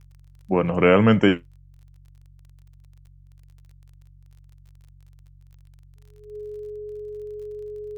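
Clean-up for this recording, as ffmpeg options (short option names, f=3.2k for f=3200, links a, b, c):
-af "adeclick=t=4,bandreject=f=46.5:t=h:w=4,bandreject=f=93:t=h:w=4,bandreject=f=139.5:t=h:w=4,bandreject=f=420:w=30"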